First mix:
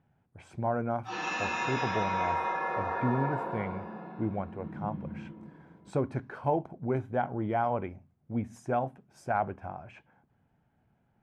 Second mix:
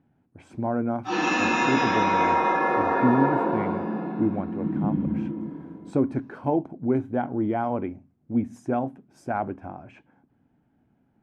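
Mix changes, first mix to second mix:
background +8.0 dB
master: add parametric band 280 Hz +13 dB 0.81 octaves

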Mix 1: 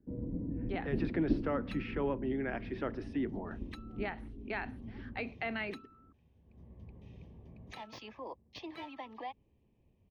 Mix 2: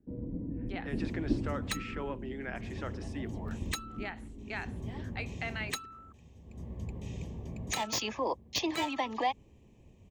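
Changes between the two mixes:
speech: add low-shelf EQ 430 Hz −10.5 dB
second sound +12.0 dB
master: remove moving average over 6 samples

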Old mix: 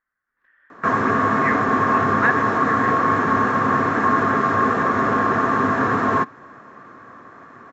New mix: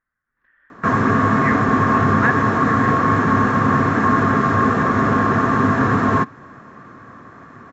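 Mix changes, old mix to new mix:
background: add high-shelf EQ 4,100 Hz +8 dB
master: add bass and treble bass +10 dB, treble −3 dB

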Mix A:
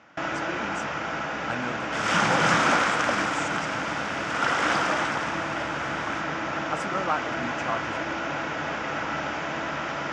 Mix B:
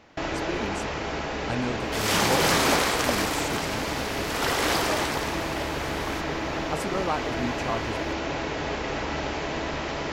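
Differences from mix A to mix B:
first sound: add bass and treble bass −4 dB, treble +1 dB
second sound: add bass and treble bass −8 dB, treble +4 dB
master: remove loudspeaker in its box 180–7,300 Hz, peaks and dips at 250 Hz −4 dB, 410 Hz −10 dB, 1,400 Hz +9 dB, 4,200 Hz −9 dB

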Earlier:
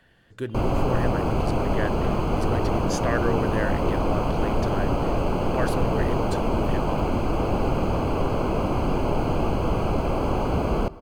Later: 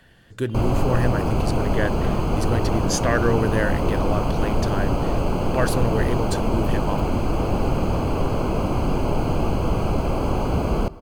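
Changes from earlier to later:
speech +4.5 dB
master: add bass and treble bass +3 dB, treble +5 dB

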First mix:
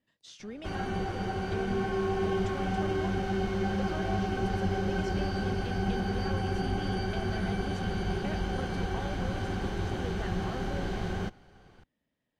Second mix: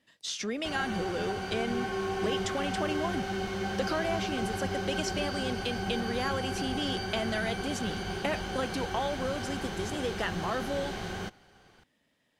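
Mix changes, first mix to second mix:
speech +11.0 dB
master: add spectral tilt +2 dB per octave

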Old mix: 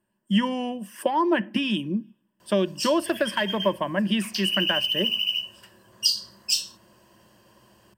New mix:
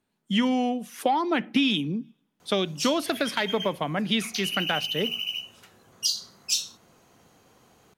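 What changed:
speech: add parametric band 4,300 Hz +10.5 dB 0.86 octaves
master: remove EQ curve with evenly spaced ripples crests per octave 1.3, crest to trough 12 dB

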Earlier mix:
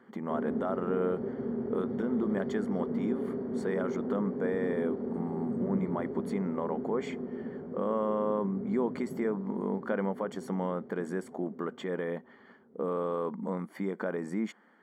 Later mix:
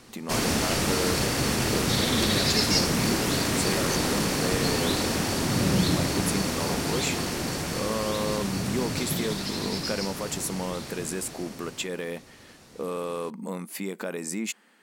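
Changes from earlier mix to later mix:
background: remove pair of resonant band-passes 310 Hz, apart 0.7 octaves
master: remove Savitzky-Golay smoothing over 41 samples

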